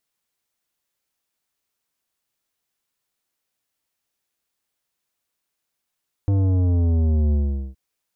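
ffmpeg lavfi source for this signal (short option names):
-f lavfi -i "aevalsrc='0.141*clip((1.47-t)/0.42,0,1)*tanh(3.76*sin(2*PI*100*1.47/log(65/100)*(exp(log(65/100)*t/1.47)-1)))/tanh(3.76)':d=1.47:s=44100"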